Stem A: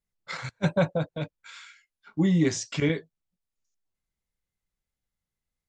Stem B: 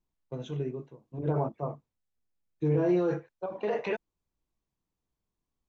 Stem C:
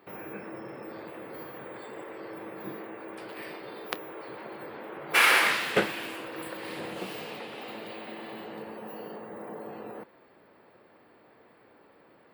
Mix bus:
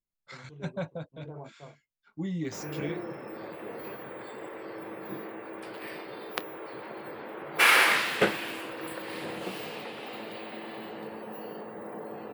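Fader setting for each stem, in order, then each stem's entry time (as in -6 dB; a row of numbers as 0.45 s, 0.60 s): -11.0 dB, -14.5 dB, +0.5 dB; 0.00 s, 0.00 s, 2.45 s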